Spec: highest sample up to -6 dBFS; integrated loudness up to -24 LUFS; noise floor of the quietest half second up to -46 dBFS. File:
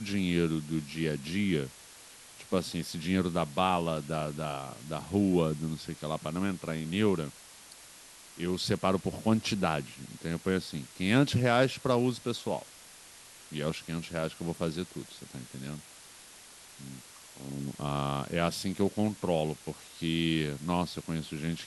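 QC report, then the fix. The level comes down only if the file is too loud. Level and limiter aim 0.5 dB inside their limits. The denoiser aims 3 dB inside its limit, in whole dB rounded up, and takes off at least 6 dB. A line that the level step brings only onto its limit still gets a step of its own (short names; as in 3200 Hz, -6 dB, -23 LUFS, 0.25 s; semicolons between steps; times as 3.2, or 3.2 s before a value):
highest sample -10.5 dBFS: OK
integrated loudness -31.5 LUFS: OK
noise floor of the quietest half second -52 dBFS: OK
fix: none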